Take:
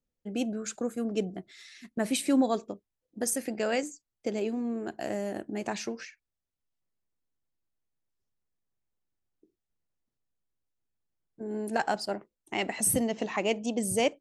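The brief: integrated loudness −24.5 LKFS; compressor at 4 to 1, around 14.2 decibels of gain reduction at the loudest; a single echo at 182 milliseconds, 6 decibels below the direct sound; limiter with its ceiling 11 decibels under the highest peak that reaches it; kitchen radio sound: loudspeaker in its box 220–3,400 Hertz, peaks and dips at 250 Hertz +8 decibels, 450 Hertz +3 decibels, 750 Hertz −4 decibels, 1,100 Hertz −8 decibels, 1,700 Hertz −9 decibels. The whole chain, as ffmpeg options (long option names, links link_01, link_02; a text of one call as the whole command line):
ffmpeg -i in.wav -af "acompressor=threshold=-38dB:ratio=4,alimiter=level_in=10dB:limit=-24dB:level=0:latency=1,volume=-10dB,highpass=220,equalizer=frequency=250:width_type=q:width=4:gain=8,equalizer=frequency=450:width_type=q:width=4:gain=3,equalizer=frequency=750:width_type=q:width=4:gain=-4,equalizer=frequency=1100:width_type=q:width=4:gain=-8,equalizer=frequency=1700:width_type=q:width=4:gain=-9,lowpass=frequency=3400:width=0.5412,lowpass=frequency=3400:width=1.3066,aecho=1:1:182:0.501,volume=18dB" out.wav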